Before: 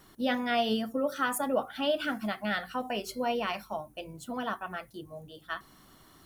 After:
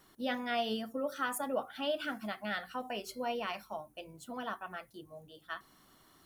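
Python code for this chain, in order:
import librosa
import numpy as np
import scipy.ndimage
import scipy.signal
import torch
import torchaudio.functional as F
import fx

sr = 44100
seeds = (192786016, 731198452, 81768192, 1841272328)

y = fx.low_shelf(x, sr, hz=190.0, db=-6.0)
y = y * 10.0 ** (-5.0 / 20.0)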